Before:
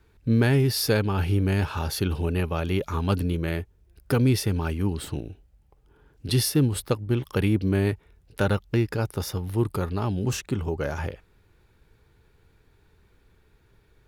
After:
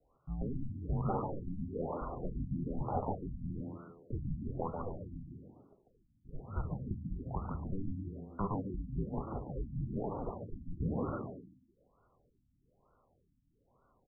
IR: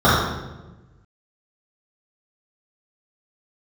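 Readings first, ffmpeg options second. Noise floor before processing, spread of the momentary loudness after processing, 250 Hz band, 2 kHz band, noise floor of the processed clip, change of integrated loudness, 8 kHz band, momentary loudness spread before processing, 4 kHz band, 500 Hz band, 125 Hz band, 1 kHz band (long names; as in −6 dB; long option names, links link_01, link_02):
−62 dBFS, 10 LU, −13.5 dB, −30.0 dB, −75 dBFS, −14.0 dB, below −40 dB, 9 LU, below −40 dB, −14.0 dB, −15.0 dB, −7.0 dB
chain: -filter_complex "[0:a]aemphasis=mode=reproduction:type=bsi,highpass=frequency=530:width_type=q:width=0.5412,highpass=frequency=530:width_type=q:width=1.307,lowpass=frequency=3400:width_type=q:width=0.5176,lowpass=frequency=3400:width_type=q:width=0.7071,lowpass=frequency=3400:width_type=q:width=1.932,afreqshift=-400,alimiter=limit=-23.5dB:level=0:latency=1:release=198,bandreject=frequency=1100:width=27,asplit=6[link_01][link_02][link_03][link_04][link_05][link_06];[link_02]adelay=143,afreqshift=82,volume=-4.5dB[link_07];[link_03]adelay=286,afreqshift=164,volume=-11.6dB[link_08];[link_04]adelay=429,afreqshift=246,volume=-18.8dB[link_09];[link_05]adelay=572,afreqshift=328,volume=-25.9dB[link_10];[link_06]adelay=715,afreqshift=410,volume=-33dB[link_11];[link_01][link_07][link_08][link_09][link_10][link_11]amix=inputs=6:normalize=0,asplit=2[link_12][link_13];[1:a]atrim=start_sample=2205,afade=type=out:start_time=0.38:duration=0.01,atrim=end_sample=17199[link_14];[link_13][link_14]afir=irnorm=-1:irlink=0,volume=-39dB[link_15];[link_12][link_15]amix=inputs=2:normalize=0,afftfilt=real='re*lt(b*sr/1024,290*pow(1500/290,0.5+0.5*sin(2*PI*1.1*pts/sr)))':imag='im*lt(b*sr/1024,290*pow(1500/290,0.5+0.5*sin(2*PI*1.1*pts/sr)))':win_size=1024:overlap=0.75,volume=-1dB"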